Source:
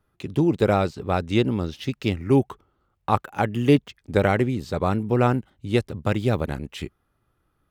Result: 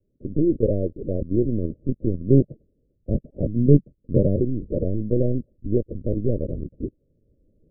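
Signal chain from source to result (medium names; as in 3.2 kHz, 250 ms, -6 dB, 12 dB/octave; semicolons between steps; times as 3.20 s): recorder AGC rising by 8.6 dB/s; LPC vocoder at 8 kHz pitch kept; 2.25–4.36 s: dynamic bell 160 Hz, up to +7 dB, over -34 dBFS, Q 1.1; steep low-pass 590 Hz 96 dB/octave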